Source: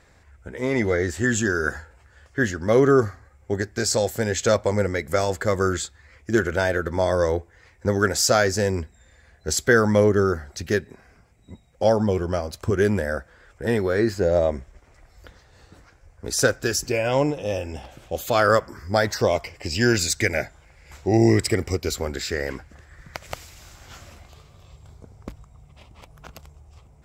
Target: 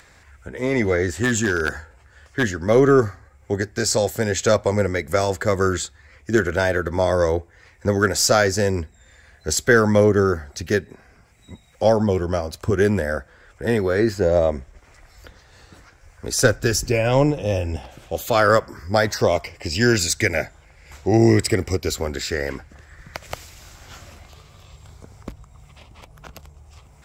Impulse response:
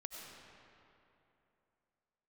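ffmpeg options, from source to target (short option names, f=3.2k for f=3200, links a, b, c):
-filter_complex "[0:a]aeval=exprs='0.708*(cos(1*acos(clip(val(0)/0.708,-1,1)))-cos(1*PI/2))+0.01*(cos(6*acos(clip(val(0)/0.708,-1,1)))-cos(6*PI/2))':c=same,asplit=3[a][b][c];[a]afade=t=out:st=1.17:d=0.02[d];[b]aeval=exprs='0.211*(abs(mod(val(0)/0.211+3,4)-2)-1)':c=same,afade=t=in:st=1.17:d=0.02,afade=t=out:st=2.42:d=0.02[e];[c]afade=t=in:st=2.42:d=0.02[f];[d][e][f]amix=inputs=3:normalize=0,asettb=1/sr,asplit=3[g][h][i];[g]atrim=end=16.444[j];[h]atrim=start=16.44:end=17.76,asetpts=PTS-STARTPTS,afade=t=in:d=0.004:c=qsin,afade=t=out:st=1.316:d=0.004:c=qsin,lowshelf=f=150:g=10[k];[i]atrim=start=17.756[l];[j][k]acrossfade=d=0.004:c1=hsin:c2=qsin[m];[m][l]acrossfade=d=0.004:c1=qsin:c2=hsin,acrossover=split=400|1000[n][o][p];[p]acompressor=mode=upward:threshold=-48dB:ratio=2.5[q];[n][o][q]amix=inputs=3:normalize=0,volume=2dB"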